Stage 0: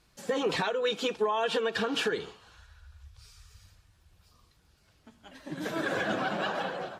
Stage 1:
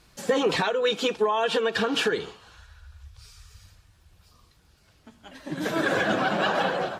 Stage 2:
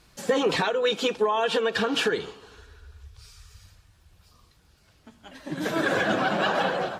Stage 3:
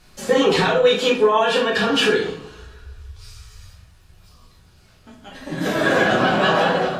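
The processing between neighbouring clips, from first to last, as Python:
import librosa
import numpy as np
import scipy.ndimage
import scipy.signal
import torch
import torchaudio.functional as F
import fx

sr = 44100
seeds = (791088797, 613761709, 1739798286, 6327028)

y1 = fx.rider(x, sr, range_db=10, speed_s=0.5)
y1 = F.gain(torch.from_numpy(y1), 6.0).numpy()
y2 = fx.echo_wet_bandpass(y1, sr, ms=151, feedback_pct=58, hz=430.0, wet_db=-22.5)
y3 = fx.room_shoebox(y2, sr, seeds[0], volume_m3=61.0, walls='mixed', distance_m=1.0)
y3 = F.gain(torch.from_numpy(y3), 2.0).numpy()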